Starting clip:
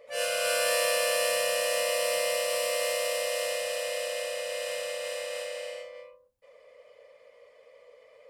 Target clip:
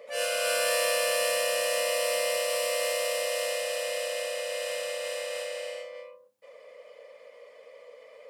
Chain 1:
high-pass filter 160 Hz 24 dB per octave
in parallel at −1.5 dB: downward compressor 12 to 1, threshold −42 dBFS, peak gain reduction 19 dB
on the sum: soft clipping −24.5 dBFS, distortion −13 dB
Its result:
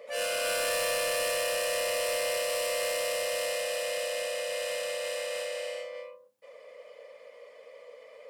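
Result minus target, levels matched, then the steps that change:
soft clipping: distortion +17 dB; downward compressor: peak gain reduction −6 dB
change: downward compressor 12 to 1, threshold −48.5 dBFS, peak gain reduction 25 dB
change: soft clipping −13 dBFS, distortion −30 dB

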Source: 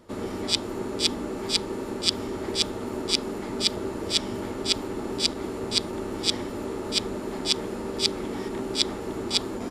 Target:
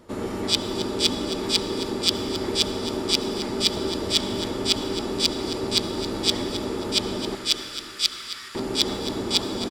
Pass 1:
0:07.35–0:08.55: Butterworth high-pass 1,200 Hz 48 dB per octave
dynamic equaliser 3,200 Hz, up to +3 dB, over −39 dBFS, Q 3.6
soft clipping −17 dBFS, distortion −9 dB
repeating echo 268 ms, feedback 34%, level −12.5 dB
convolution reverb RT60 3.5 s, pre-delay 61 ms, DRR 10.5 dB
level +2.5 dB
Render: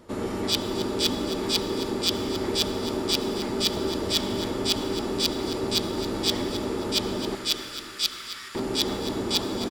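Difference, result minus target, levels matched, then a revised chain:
soft clipping: distortion +10 dB
0:07.35–0:08.55: Butterworth high-pass 1,200 Hz 48 dB per octave
dynamic equaliser 3,200 Hz, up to +3 dB, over −39 dBFS, Q 3.6
soft clipping −7.5 dBFS, distortion −19 dB
repeating echo 268 ms, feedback 34%, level −12.5 dB
convolution reverb RT60 3.5 s, pre-delay 61 ms, DRR 10.5 dB
level +2.5 dB

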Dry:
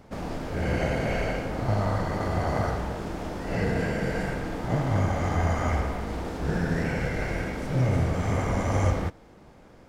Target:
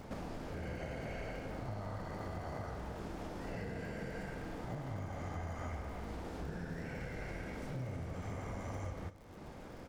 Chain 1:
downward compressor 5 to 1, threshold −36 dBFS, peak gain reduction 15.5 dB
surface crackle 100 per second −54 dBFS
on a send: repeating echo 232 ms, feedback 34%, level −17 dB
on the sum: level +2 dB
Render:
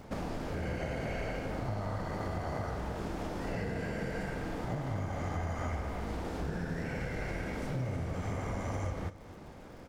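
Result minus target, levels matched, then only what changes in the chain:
downward compressor: peak gain reduction −6.5 dB
change: downward compressor 5 to 1, threshold −44 dBFS, peak gain reduction 22 dB

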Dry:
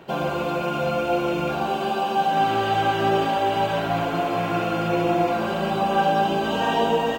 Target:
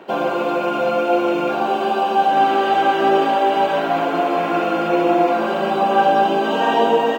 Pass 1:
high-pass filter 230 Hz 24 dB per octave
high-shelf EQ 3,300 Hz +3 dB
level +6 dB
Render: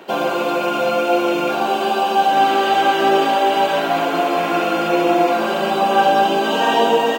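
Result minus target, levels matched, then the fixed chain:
8,000 Hz band +9.0 dB
high-pass filter 230 Hz 24 dB per octave
high-shelf EQ 3,300 Hz −8.5 dB
level +6 dB

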